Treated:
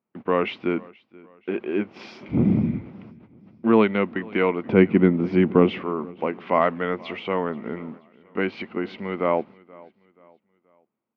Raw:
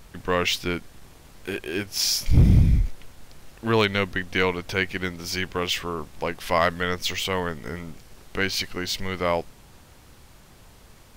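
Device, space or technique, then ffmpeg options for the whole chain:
bass cabinet: -filter_complex "[0:a]agate=range=-32dB:threshold=-38dB:ratio=16:detection=peak,highpass=210,highpass=80,equalizer=f=220:t=q:w=4:g=10,equalizer=f=340:t=q:w=4:g=5,equalizer=f=1.7k:t=q:w=4:g=-10,lowpass=f=2.2k:w=0.5412,lowpass=f=2.2k:w=1.3066,asettb=1/sr,asplit=3[a][b][c];[a]atrim=end=4.654[d];[b]atrim=start=4.65:end=5.82,asetpts=PTS-STARTPTS,afade=t=in:d=0.004:c=qsin,afade=t=out:st=1.166:d=0.004:c=qsin,equalizer=f=140:w=0.33:g=15[e];[c]atrim=start=5.816[f];[d][e]acrossfade=d=0.004:c1=hsin:c2=qsin[g];[g][f]acrossfade=d=0.004:c1=qsin:c2=hsin,aecho=1:1:479|958|1437:0.0668|0.0267|0.0107,volume=2dB"

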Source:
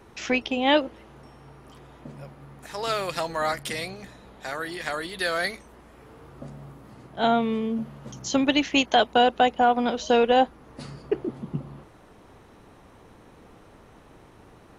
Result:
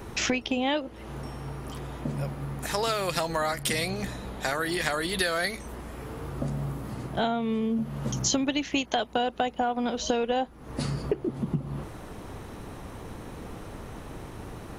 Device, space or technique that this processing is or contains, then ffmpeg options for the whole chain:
ASMR close-microphone chain: -af "lowshelf=f=200:g=6.5,acompressor=threshold=-33dB:ratio=6,highshelf=f=7.6k:g=7.5,volume=8dB"

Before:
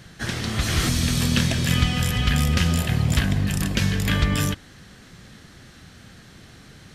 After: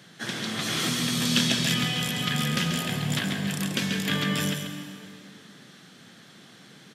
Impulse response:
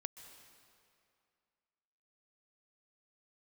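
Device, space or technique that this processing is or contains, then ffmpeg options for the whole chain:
PA in a hall: -filter_complex "[0:a]highpass=120,equalizer=f=3.4k:t=o:w=0.21:g=5.5,aecho=1:1:136:0.447[a];[1:a]atrim=start_sample=2205[b];[a][b]afir=irnorm=-1:irlink=0,highpass=f=140:w=0.5412,highpass=f=140:w=1.3066,asettb=1/sr,asplit=3[c][d][e];[c]atrim=end=1.254[f];[d]atrim=start=1.25:end=1.74,asetpts=PTS-STARTPTS,afade=t=in:d=0.004:c=qsin,afade=t=out:st=0.486:d=0.004:c=qsin,equalizer=f=5.1k:t=o:w=1.8:g=4.5[g];[e]atrim=start=1.736[h];[f][g]acrossfade=d=0.004:c1=hsin:c2=qsin[i];[i][h]acrossfade=d=0.004:c1=qsin:c2=hsin"

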